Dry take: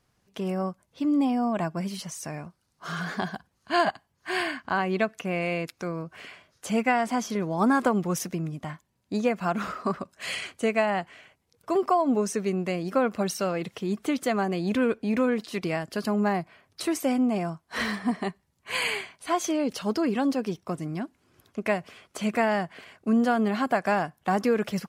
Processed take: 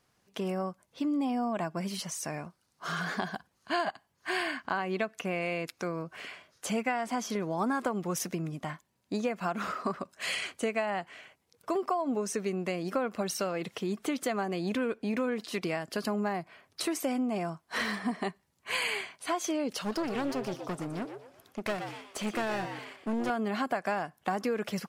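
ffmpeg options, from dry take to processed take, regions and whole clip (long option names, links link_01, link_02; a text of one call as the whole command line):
ffmpeg -i in.wav -filter_complex "[0:a]asettb=1/sr,asplit=3[link_01][link_02][link_03];[link_01]atrim=end=19.804[link_04];[link_02]atrim=start=19.8:end=23.3,asetpts=PTS-STARTPTS,afade=type=in:duration=0.004:curve=qsin,afade=type=out:start_time=3.496:duration=0.004:curve=qsin,aeval=exprs='clip(val(0),-1,0.0178)':channel_layout=same,asplit=5[link_05][link_06][link_07][link_08][link_09];[link_06]adelay=120,afreqshift=130,volume=-10dB[link_10];[link_07]adelay=240,afreqshift=260,volume=-19.9dB[link_11];[link_08]adelay=360,afreqshift=390,volume=-29.8dB[link_12];[link_09]adelay=480,afreqshift=520,volume=-39.7dB[link_13];[link_05][link_10][link_11][link_12][link_13]amix=inputs=5:normalize=0,atrim=end_sample=154350[link_14];[link_03]atrim=start=23.296[link_15];[link_04][link_14]acrossfade=duration=0.004:curve1=hsin:curve2=qsin[link_16];[link_16][link_15]acrossfade=duration=0.004:curve1=qsin:curve2=hsin,lowshelf=frequency=140:gain=-10,acompressor=threshold=-30dB:ratio=3,volume=1dB" out.wav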